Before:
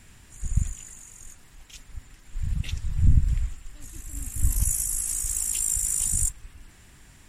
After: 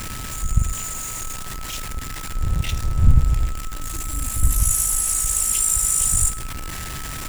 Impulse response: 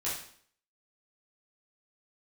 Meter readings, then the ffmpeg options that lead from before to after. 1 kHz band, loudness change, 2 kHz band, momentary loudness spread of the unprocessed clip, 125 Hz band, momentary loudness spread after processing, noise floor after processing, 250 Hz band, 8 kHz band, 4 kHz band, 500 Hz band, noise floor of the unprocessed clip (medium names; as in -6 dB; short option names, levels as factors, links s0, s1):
+22.0 dB, +4.5 dB, +12.5 dB, 21 LU, +5.0 dB, 14 LU, -31 dBFS, +6.5 dB, +6.5 dB, +10.5 dB, no reading, -52 dBFS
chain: -filter_complex "[0:a]aeval=exprs='val(0)+0.5*0.0316*sgn(val(0))':c=same,aeval=exprs='val(0)+0.00794*sin(2*PI*1300*n/s)':c=same,asplit=2[s0][s1];[1:a]atrim=start_sample=2205,highshelf=f=8600:g=10[s2];[s1][s2]afir=irnorm=-1:irlink=0,volume=0.112[s3];[s0][s3]amix=inputs=2:normalize=0,volume=1.5"